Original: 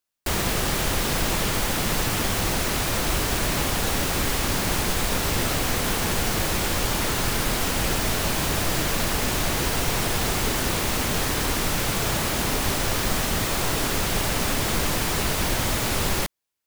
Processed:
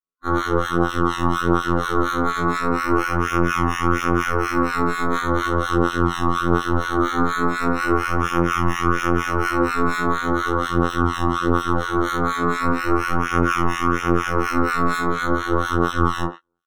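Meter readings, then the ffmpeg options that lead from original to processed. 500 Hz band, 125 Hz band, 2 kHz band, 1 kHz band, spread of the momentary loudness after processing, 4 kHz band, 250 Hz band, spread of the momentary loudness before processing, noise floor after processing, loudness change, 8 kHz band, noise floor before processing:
+5.5 dB, +2.5 dB, +3.5 dB, +8.5 dB, 2 LU, -8.0 dB, +8.0 dB, 0 LU, -28 dBFS, +2.5 dB, -13.0 dB, -26 dBFS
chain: -filter_complex "[0:a]acrusher=samples=15:mix=1:aa=0.000001:lfo=1:lforange=9:lforate=0.2,highshelf=f=5.1k:g=-2.5,areverse,acompressor=mode=upward:threshold=-45dB:ratio=2.5,areverse,afftfilt=real='hypot(re,im)*cos(PI*b)':imag='0':win_size=2048:overlap=0.75,asuperstop=centerf=4700:order=12:qfactor=5.8,flanger=delay=18.5:depth=5.8:speed=0.4,afftdn=nr=21:nf=-49,superequalizer=6b=2.82:7b=1.58:8b=0.447:10b=3.55,asplit=2[a][b];[b]adelay=90,highpass=300,lowpass=3.4k,asoftclip=type=hard:threshold=-14.5dB,volume=-11dB[c];[a][c]amix=inputs=2:normalize=0,acrossover=split=1300[d][e];[d]aeval=exprs='val(0)*(1-1/2+1/2*cos(2*PI*4.2*n/s))':c=same[f];[e]aeval=exprs='val(0)*(1-1/2-1/2*cos(2*PI*4.2*n/s))':c=same[g];[f][g]amix=inputs=2:normalize=0,afftfilt=real='re*2*eq(mod(b,4),0)':imag='im*2*eq(mod(b,4),0)':win_size=2048:overlap=0.75,volume=7.5dB"

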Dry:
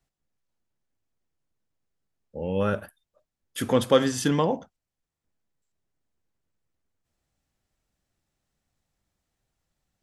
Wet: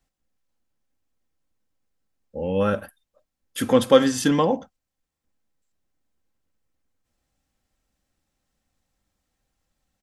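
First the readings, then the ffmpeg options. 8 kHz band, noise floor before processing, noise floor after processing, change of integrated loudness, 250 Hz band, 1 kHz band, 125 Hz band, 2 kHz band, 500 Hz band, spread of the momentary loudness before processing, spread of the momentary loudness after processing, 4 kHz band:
+3.0 dB, under -85 dBFS, -83 dBFS, +4.0 dB, +4.5 dB, +3.5 dB, 0.0 dB, +3.0 dB, +4.5 dB, 14 LU, 15 LU, +3.0 dB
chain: -af "aecho=1:1:3.8:0.35,volume=2.5dB"

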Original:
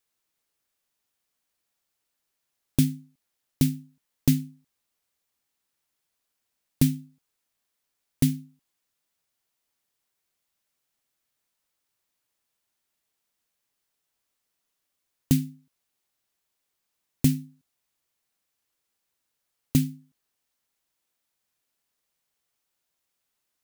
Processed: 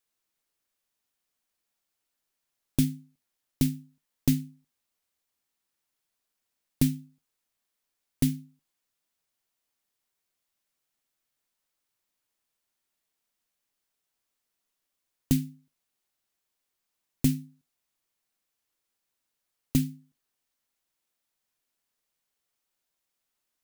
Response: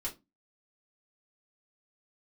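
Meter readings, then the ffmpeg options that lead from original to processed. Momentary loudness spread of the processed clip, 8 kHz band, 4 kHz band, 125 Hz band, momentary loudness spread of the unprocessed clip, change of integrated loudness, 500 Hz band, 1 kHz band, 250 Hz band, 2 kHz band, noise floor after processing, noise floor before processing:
14 LU, -2.5 dB, -2.5 dB, -4.0 dB, 14 LU, -3.0 dB, -2.5 dB, n/a, -2.5 dB, -2.5 dB, -83 dBFS, -81 dBFS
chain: -filter_complex "[0:a]asplit=2[a][b];[1:a]atrim=start_sample=2205,atrim=end_sample=3087[c];[b][c]afir=irnorm=-1:irlink=0,volume=-14.5dB[d];[a][d]amix=inputs=2:normalize=0,volume=-3.5dB"

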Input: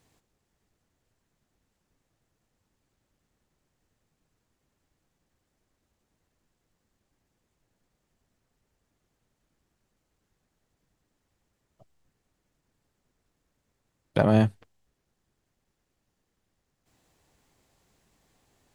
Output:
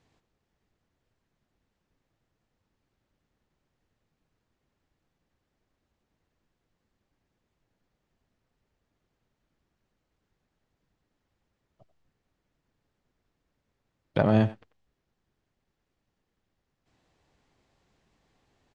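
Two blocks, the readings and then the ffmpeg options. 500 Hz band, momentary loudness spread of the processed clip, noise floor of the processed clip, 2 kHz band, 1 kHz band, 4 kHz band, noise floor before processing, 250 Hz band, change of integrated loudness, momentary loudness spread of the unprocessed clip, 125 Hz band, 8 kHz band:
-1.5 dB, 8 LU, -81 dBFS, -1.5 dB, -1.5 dB, -2.5 dB, -79 dBFS, -1.5 dB, -1.5 dB, 8 LU, -1.5 dB, n/a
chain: -filter_complex "[0:a]lowpass=4.8k,asplit=2[a][b];[b]adelay=90,highpass=300,lowpass=3.4k,asoftclip=type=hard:threshold=-17dB,volume=-14dB[c];[a][c]amix=inputs=2:normalize=0,volume=-1.5dB"

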